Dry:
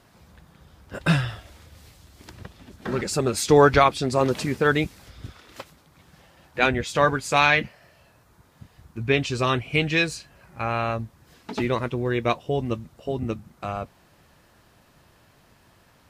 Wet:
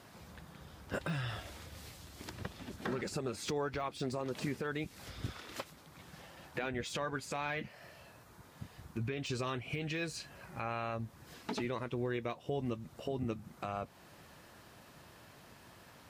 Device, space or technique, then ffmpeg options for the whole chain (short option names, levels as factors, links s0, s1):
podcast mastering chain: -af "highpass=f=100:p=1,deesser=0.8,acompressor=threshold=0.0316:ratio=3,alimiter=level_in=1.5:limit=0.0631:level=0:latency=1:release=293,volume=0.668,volume=1.19" -ar 48000 -c:a libmp3lame -b:a 112k